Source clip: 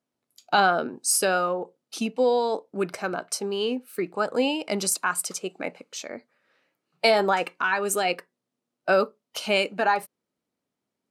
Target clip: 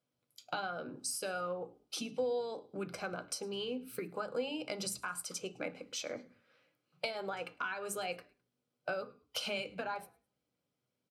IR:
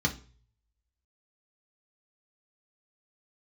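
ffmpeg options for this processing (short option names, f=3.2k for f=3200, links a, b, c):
-filter_complex "[0:a]acompressor=threshold=-32dB:ratio=10,asplit=3[a][b][c];[b]adelay=105,afreqshift=-66,volume=-24dB[d];[c]adelay=210,afreqshift=-132,volume=-33.6dB[e];[a][d][e]amix=inputs=3:normalize=0,asplit=2[f][g];[1:a]atrim=start_sample=2205,lowshelf=f=140:g=-5.5[h];[g][h]afir=irnorm=-1:irlink=0,volume=-13dB[i];[f][i]amix=inputs=2:normalize=0,volume=-3dB"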